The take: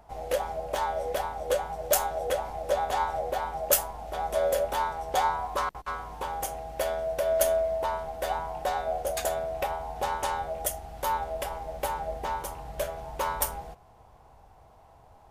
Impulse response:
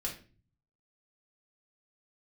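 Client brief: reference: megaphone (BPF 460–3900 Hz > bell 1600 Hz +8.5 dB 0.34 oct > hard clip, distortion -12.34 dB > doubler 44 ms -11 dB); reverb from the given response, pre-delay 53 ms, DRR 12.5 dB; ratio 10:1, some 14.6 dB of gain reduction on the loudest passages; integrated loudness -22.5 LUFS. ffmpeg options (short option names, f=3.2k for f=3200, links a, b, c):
-filter_complex "[0:a]acompressor=threshold=-33dB:ratio=10,asplit=2[a][b];[1:a]atrim=start_sample=2205,adelay=53[c];[b][c]afir=irnorm=-1:irlink=0,volume=-14dB[d];[a][d]amix=inputs=2:normalize=0,highpass=460,lowpass=3.9k,equalizer=f=1.6k:t=o:w=0.34:g=8.5,asoftclip=type=hard:threshold=-35dB,asplit=2[e][f];[f]adelay=44,volume=-11dB[g];[e][g]amix=inputs=2:normalize=0,volume=17.5dB"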